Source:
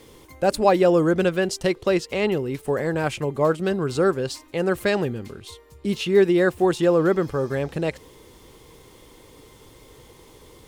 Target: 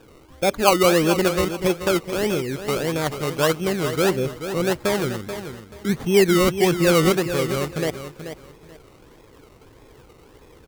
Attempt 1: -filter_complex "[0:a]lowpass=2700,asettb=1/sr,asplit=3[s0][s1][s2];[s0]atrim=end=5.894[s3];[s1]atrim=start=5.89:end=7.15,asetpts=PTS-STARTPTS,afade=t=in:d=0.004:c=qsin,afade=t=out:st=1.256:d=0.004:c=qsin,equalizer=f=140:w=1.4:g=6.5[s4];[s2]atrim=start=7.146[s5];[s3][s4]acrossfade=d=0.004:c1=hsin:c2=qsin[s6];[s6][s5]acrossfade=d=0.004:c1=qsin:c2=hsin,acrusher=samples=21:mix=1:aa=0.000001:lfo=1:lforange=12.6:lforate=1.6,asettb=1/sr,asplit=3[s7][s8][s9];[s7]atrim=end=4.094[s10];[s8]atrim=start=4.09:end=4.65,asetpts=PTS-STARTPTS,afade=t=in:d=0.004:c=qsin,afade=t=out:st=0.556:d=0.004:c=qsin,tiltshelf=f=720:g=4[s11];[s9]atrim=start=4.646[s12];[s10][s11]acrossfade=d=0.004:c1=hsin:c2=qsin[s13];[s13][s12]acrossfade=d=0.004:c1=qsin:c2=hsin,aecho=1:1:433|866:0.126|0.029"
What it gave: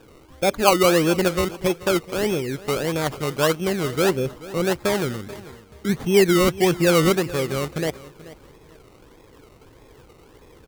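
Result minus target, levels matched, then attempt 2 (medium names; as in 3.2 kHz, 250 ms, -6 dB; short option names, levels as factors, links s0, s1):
echo-to-direct -8 dB
-filter_complex "[0:a]lowpass=2700,asettb=1/sr,asplit=3[s0][s1][s2];[s0]atrim=end=5.894[s3];[s1]atrim=start=5.89:end=7.15,asetpts=PTS-STARTPTS,afade=t=in:d=0.004:c=qsin,afade=t=out:st=1.256:d=0.004:c=qsin,equalizer=f=140:w=1.4:g=6.5[s4];[s2]atrim=start=7.146[s5];[s3][s4]acrossfade=d=0.004:c1=hsin:c2=qsin[s6];[s6][s5]acrossfade=d=0.004:c1=qsin:c2=hsin,acrusher=samples=21:mix=1:aa=0.000001:lfo=1:lforange=12.6:lforate=1.6,asettb=1/sr,asplit=3[s7][s8][s9];[s7]atrim=end=4.094[s10];[s8]atrim=start=4.09:end=4.65,asetpts=PTS-STARTPTS,afade=t=in:d=0.004:c=qsin,afade=t=out:st=0.556:d=0.004:c=qsin,tiltshelf=f=720:g=4[s11];[s9]atrim=start=4.646[s12];[s10][s11]acrossfade=d=0.004:c1=hsin:c2=qsin[s13];[s13][s12]acrossfade=d=0.004:c1=qsin:c2=hsin,aecho=1:1:433|866|1299:0.316|0.0727|0.0167"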